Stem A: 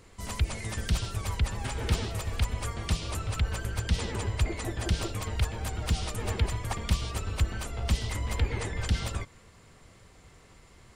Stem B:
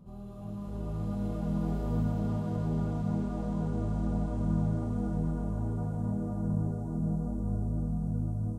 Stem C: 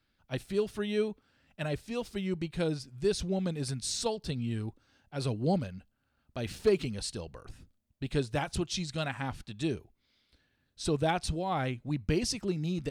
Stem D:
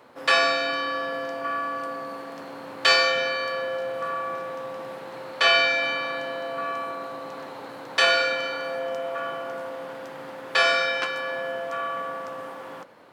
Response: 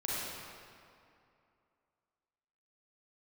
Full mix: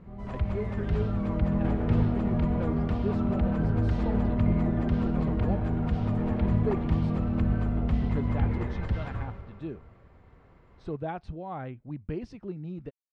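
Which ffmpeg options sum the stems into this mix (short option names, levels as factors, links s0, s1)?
-filter_complex "[0:a]volume=0.631,asplit=2[s0][s1];[s1]volume=0.376[s2];[1:a]volume=1,asplit=2[s3][s4];[s4]volume=0.376[s5];[2:a]volume=0.562[s6];[4:a]atrim=start_sample=2205[s7];[s2][s5]amix=inputs=2:normalize=0[s8];[s8][s7]afir=irnorm=-1:irlink=0[s9];[s0][s3][s6][s9]amix=inputs=4:normalize=0,lowpass=1500"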